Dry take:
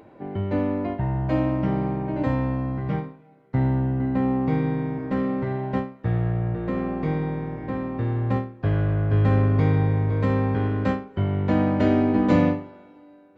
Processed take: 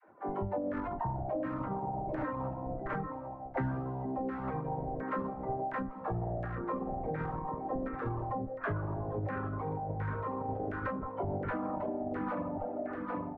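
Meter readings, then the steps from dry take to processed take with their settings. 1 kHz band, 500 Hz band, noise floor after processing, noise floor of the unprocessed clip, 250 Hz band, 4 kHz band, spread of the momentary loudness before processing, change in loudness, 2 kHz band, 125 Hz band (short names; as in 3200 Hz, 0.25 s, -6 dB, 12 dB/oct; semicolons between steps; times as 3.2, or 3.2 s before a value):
-4.0 dB, -9.0 dB, -43 dBFS, -50 dBFS, -14.5 dB, n/a, 9 LU, -12.5 dB, -7.5 dB, -16.5 dB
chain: self-modulated delay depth 0.18 ms; expander -42 dBFS; low shelf 210 Hz -11.5 dB; band-limited delay 0.153 s, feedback 77%, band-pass 1100 Hz, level -12 dB; in parallel at -7 dB: Schmitt trigger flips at -26 dBFS; on the sum: LFO low-pass saw down 1.4 Hz 660–1600 Hz; dispersion lows, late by 68 ms, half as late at 360 Hz; on a send: echo 0.791 s -12.5 dB; on the sum: limiter -19.5 dBFS, peak gain reduction 10.5 dB; compressor 3:1, threshold -30 dBFS, peak gain reduction 5.5 dB; reverb removal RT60 1.5 s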